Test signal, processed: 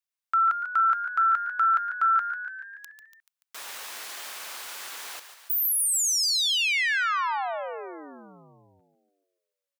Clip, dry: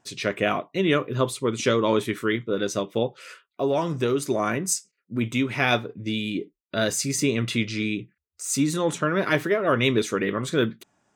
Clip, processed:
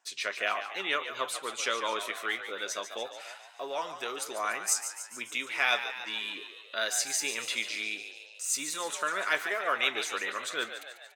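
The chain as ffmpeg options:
-filter_complex "[0:a]highpass=940,asplit=8[a][b][c][d][e][f][g][h];[b]adelay=144,afreqshift=65,volume=-10dB[i];[c]adelay=288,afreqshift=130,volume=-14.3dB[j];[d]adelay=432,afreqshift=195,volume=-18.6dB[k];[e]adelay=576,afreqshift=260,volume=-22.9dB[l];[f]adelay=720,afreqshift=325,volume=-27.2dB[m];[g]adelay=864,afreqshift=390,volume=-31.5dB[n];[h]adelay=1008,afreqshift=455,volume=-35.8dB[o];[a][i][j][k][l][m][n][o]amix=inputs=8:normalize=0,volume=-2.5dB"

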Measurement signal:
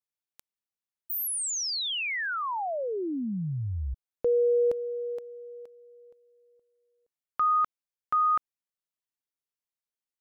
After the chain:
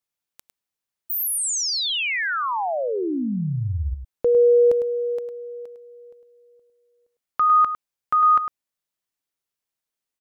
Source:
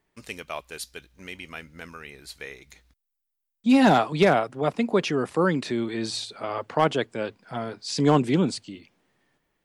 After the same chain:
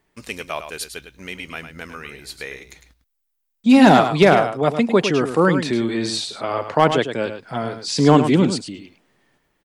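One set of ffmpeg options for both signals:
-af "aecho=1:1:104:0.355,volume=6dB"

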